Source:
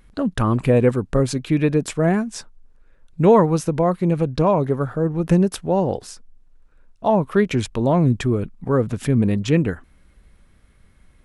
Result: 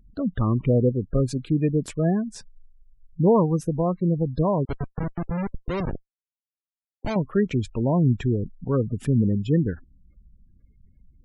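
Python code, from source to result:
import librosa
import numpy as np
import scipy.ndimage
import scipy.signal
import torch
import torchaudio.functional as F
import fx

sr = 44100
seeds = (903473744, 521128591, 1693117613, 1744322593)

y = fx.low_shelf(x, sr, hz=330.0, db=7.0)
y = fx.schmitt(y, sr, flips_db=-14.5, at=(4.65, 7.16))
y = fx.spec_gate(y, sr, threshold_db=-25, keep='strong')
y = y * 10.0 ** (-8.0 / 20.0)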